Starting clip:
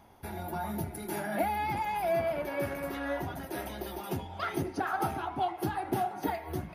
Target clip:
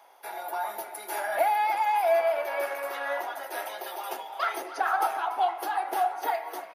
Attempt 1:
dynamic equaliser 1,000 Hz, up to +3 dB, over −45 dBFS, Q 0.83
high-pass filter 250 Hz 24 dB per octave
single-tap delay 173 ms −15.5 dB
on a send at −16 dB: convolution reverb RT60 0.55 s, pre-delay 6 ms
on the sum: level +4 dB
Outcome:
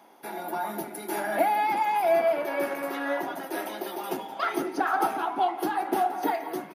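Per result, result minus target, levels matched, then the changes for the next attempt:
250 Hz band +15.0 dB; echo 116 ms early
change: high-pass filter 520 Hz 24 dB per octave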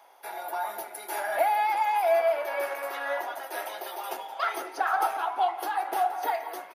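echo 116 ms early
change: single-tap delay 289 ms −15.5 dB

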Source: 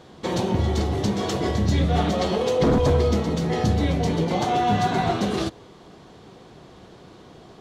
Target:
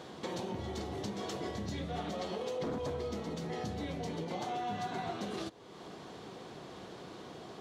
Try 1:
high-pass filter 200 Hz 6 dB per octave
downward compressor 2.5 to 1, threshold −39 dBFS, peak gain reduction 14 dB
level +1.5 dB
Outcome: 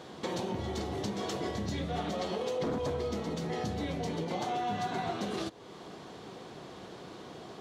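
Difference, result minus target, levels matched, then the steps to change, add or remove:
downward compressor: peak gain reduction −4 dB
change: downward compressor 2.5 to 1, threshold −45.5 dBFS, peak gain reduction 18 dB

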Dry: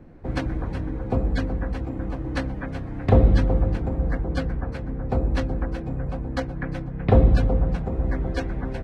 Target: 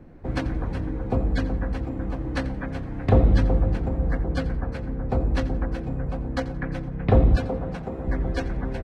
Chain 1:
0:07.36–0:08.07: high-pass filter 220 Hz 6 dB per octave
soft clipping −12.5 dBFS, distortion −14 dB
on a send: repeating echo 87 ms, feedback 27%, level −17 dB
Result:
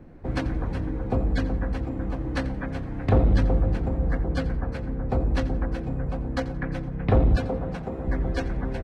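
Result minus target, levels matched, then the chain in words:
soft clipping: distortion +8 dB
0:07.36–0:08.07: high-pass filter 220 Hz 6 dB per octave
soft clipping −6.5 dBFS, distortion −22 dB
on a send: repeating echo 87 ms, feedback 27%, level −17 dB

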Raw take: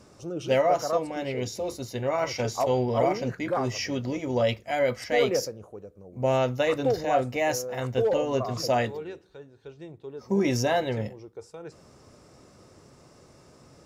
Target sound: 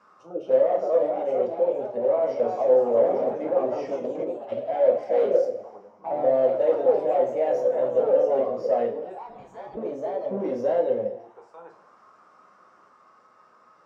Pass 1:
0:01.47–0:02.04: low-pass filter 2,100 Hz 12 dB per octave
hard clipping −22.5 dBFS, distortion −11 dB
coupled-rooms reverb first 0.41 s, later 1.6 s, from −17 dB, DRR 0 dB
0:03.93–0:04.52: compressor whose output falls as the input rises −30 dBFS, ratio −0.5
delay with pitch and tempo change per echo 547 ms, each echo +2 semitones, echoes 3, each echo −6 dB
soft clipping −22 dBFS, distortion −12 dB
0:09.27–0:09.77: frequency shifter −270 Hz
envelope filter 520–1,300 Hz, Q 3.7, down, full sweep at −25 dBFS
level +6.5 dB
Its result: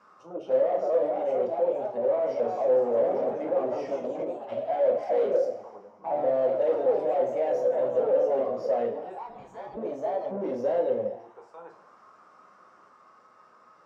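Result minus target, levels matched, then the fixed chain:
soft clipping: distortion +14 dB
0:01.47–0:02.04: low-pass filter 2,100 Hz 12 dB per octave
hard clipping −22.5 dBFS, distortion −11 dB
coupled-rooms reverb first 0.41 s, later 1.6 s, from −17 dB, DRR 0 dB
0:03.93–0:04.52: compressor whose output falls as the input rises −30 dBFS, ratio −0.5
delay with pitch and tempo change per echo 547 ms, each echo +2 semitones, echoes 3, each echo −6 dB
soft clipping −11.5 dBFS, distortion −26 dB
0:09.27–0:09.77: frequency shifter −270 Hz
envelope filter 520–1,300 Hz, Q 3.7, down, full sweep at −25 dBFS
level +6.5 dB

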